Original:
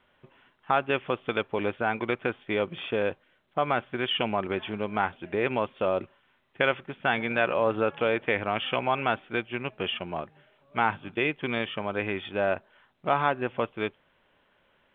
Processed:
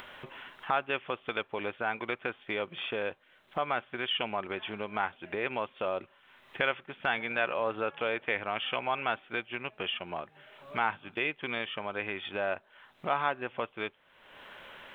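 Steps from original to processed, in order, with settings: low shelf 470 Hz -10 dB; upward compressor, threshold -28 dBFS; gain -2.5 dB

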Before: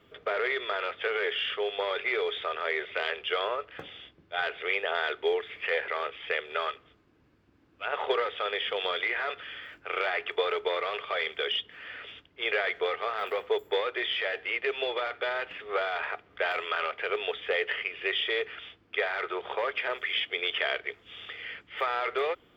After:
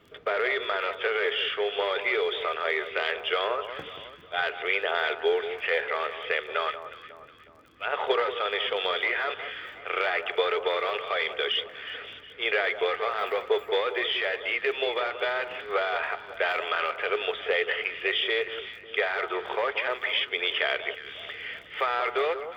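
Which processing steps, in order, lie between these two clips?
crackle 18/s -46 dBFS; on a send: echo with dull and thin repeats by turns 0.182 s, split 1300 Hz, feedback 63%, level -10 dB; on the sum: gain +2.5 dB

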